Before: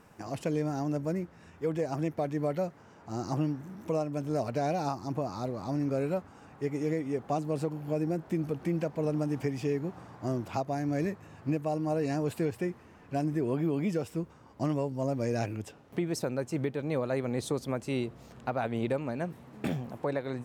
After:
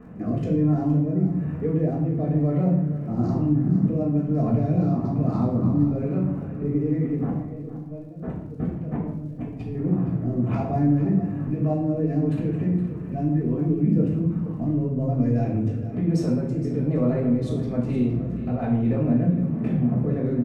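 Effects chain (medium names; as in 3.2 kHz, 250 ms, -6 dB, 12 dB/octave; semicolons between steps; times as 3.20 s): local Wiener filter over 9 samples; low-pass 1.8 kHz 6 dB/octave; peaking EQ 170 Hz +11.5 dB 1.7 oct; peak limiter -28 dBFS, peak gain reduction 16 dB; 7.14–9.75 s: compressor with a negative ratio -42 dBFS, ratio -0.5; rotary cabinet horn 1.1 Hz; crackle 53 per s -63 dBFS; delay 467 ms -13 dB; reverberation RT60 0.75 s, pre-delay 4 ms, DRR -4.5 dB; trim +4.5 dB; Vorbis 192 kbps 48 kHz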